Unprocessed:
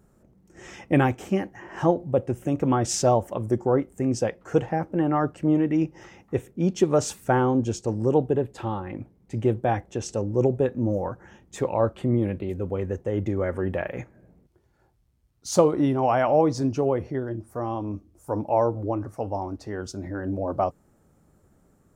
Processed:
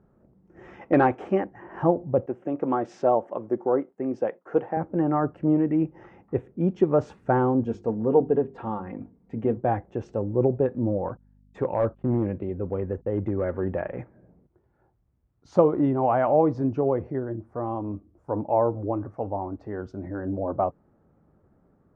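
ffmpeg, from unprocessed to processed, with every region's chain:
ffmpeg -i in.wav -filter_complex "[0:a]asettb=1/sr,asplit=3[link_01][link_02][link_03];[link_01]atrim=end=0.814[link_04];[link_02]atrim=start=0.81:end=1.44,asetpts=PTS-STARTPTS,afade=type=in:duration=0.004:curve=qsin,afade=type=out:start_time=0.626:duration=0.004:curve=qsin,bass=frequency=250:gain=-12,treble=frequency=4000:gain=1,acontrast=39,asoftclip=type=hard:threshold=-8dB[link_05];[link_03]atrim=start=1.436[link_06];[link_04][link_05]acrossfade=duration=0.004:curve1=hsin:curve2=qsin[link_07];[link_07][link_06]acrossfade=duration=0.004:curve1=qsin:curve2=hsin,asettb=1/sr,asplit=3[link_08][link_09][link_10];[link_08]atrim=end=2.264[link_11];[link_09]atrim=start=2.26:end=4.77,asetpts=PTS-STARTPTS,afade=type=in:duration=0.004:curve=qsin,afade=type=out:start_time=2.506:duration=0.004:curve=qsin,agate=range=-33dB:threshold=-46dB:ratio=3:release=100:detection=peak,highpass=280,highshelf=frequency=7800:gain=-6[link_12];[link_10]atrim=start=4.766[link_13];[link_11][link_12]acrossfade=duration=0.004:curve1=hsin:curve2=qsin[link_14];[link_14][link_13]acrossfade=duration=0.004:curve1=qsin:curve2=hsin,asettb=1/sr,asplit=3[link_15][link_16][link_17];[link_15]atrim=end=7.634[link_18];[link_16]atrim=start=7.63:end=9.57,asetpts=PTS-STARTPTS,afade=type=in:duration=0.004:curve=qsin,afade=type=out:start_time=1.936:duration=0.004:curve=qsin,bandreject=frequency=50:width_type=h:width=6,bandreject=frequency=100:width_type=h:width=6,bandreject=frequency=150:width_type=h:width=6,bandreject=frequency=200:width_type=h:width=6,bandreject=frequency=250:width_type=h:width=6,bandreject=frequency=300:width_type=h:width=6,bandreject=frequency=350:width_type=h:width=6,bandreject=frequency=400:width_type=h:width=6,aecho=1:1:4.3:0.49,atrim=end_sample=85554[link_19];[link_17]atrim=start=9.566[link_20];[link_18][link_19]acrossfade=duration=0.004:curve1=hsin:curve2=qsin[link_21];[link_21][link_20]acrossfade=duration=0.004:curve1=qsin:curve2=hsin,asettb=1/sr,asplit=3[link_22][link_23][link_24];[link_22]atrim=end=11.094[link_25];[link_23]atrim=start=11.09:end=13.95,asetpts=PTS-STARTPTS,afade=type=in:duration=0.004:curve=qsin,afade=type=out:start_time=2.856:duration=0.004:curve=qsin,agate=range=-32dB:threshold=-42dB:ratio=16:release=100:detection=peak,volume=16.5dB,asoftclip=hard,volume=-16.5dB,aeval=exprs='val(0)+0.002*(sin(2*PI*50*n/s)+sin(2*PI*2*50*n/s)/2+sin(2*PI*3*50*n/s)/3+sin(2*PI*4*50*n/s)/4+sin(2*PI*5*50*n/s)/5)':channel_layout=same[link_26];[link_24]atrim=start=13.946[link_27];[link_25][link_26]acrossfade=duration=0.004:curve1=hsin:curve2=qsin[link_28];[link_28][link_27]acrossfade=duration=0.004:curve1=qsin:curve2=hsin,lowpass=1400,lowshelf=frequency=63:gain=-6.5" out.wav

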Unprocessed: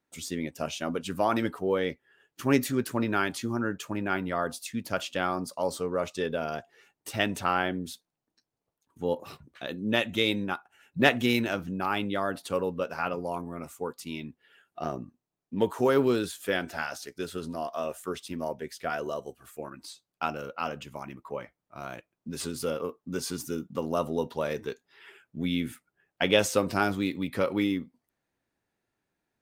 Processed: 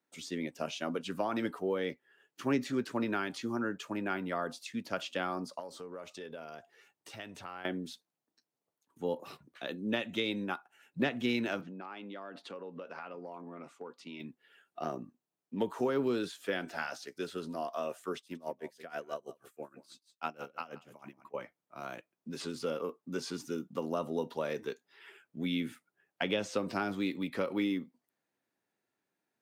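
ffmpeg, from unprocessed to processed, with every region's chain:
ffmpeg -i in.wav -filter_complex "[0:a]asettb=1/sr,asplit=3[link_01][link_02][link_03];[link_01]atrim=end=5.594[link_04];[link_02]atrim=start=5.59:end=7.65,asetpts=PTS-STARTPTS,afade=type=in:duration=0.004:curve=qsin,afade=type=out:start_time=2.056:duration=0.004:curve=qsin,asubboost=boost=8:cutoff=94,acompressor=threshold=-39dB:ratio=4:attack=3.2:release=140:knee=1:detection=peak[link_05];[link_03]atrim=start=7.646[link_06];[link_04][link_05]acrossfade=duration=0.004:curve1=hsin:curve2=qsin[link_07];[link_07][link_06]acrossfade=duration=0.004:curve1=qsin:curve2=hsin,asettb=1/sr,asplit=3[link_08][link_09][link_10];[link_08]atrim=end=11.614[link_11];[link_09]atrim=start=11.61:end=14.2,asetpts=PTS-STARTPTS,afade=type=in:duration=0.004:curve=qsin,afade=type=out:start_time=2.586:duration=0.004:curve=qsin,highpass=160,lowpass=3800,acompressor=threshold=-36dB:ratio=10:attack=3.2:release=140:knee=1:detection=peak[link_12];[link_10]atrim=start=14.196[link_13];[link_11][link_12]acrossfade=duration=0.004:curve1=hsin:curve2=qsin[link_14];[link_14][link_13]acrossfade=duration=0.004:curve1=qsin:curve2=hsin,asettb=1/sr,asplit=3[link_15][link_16][link_17];[link_15]atrim=end=18.174[link_18];[link_16]atrim=start=18.17:end=21.34,asetpts=PTS-STARTPTS,afade=type=in:duration=0.004:curve=qsin,afade=type=out:start_time=3.166:duration=0.004:curve=qsin,aecho=1:1:177:0.168,atrim=end_sample=139797,aeval=exprs='val(0)*pow(10,-20*(0.5-0.5*cos(2*PI*6.2*n/s))/20)':channel_layout=same[link_19];[link_17]atrim=start=21.336[link_20];[link_18][link_19]acrossfade=duration=0.004:curve1=hsin:curve2=qsin[link_21];[link_21][link_20]acrossfade=duration=0.004:curve1=qsin:curve2=hsin,acrossover=split=6300[link_22][link_23];[link_23]acompressor=threshold=-57dB:ratio=4:attack=1:release=60[link_24];[link_22][link_24]amix=inputs=2:normalize=0,highpass=180,acrossover=split=260[link_25][link_26];[link_26]acompressor=threshold=-27dB:ratio=6[link_27];[link_25][link_27]amix=inputs=2:normalize=0,volume=-3dB" out.wav

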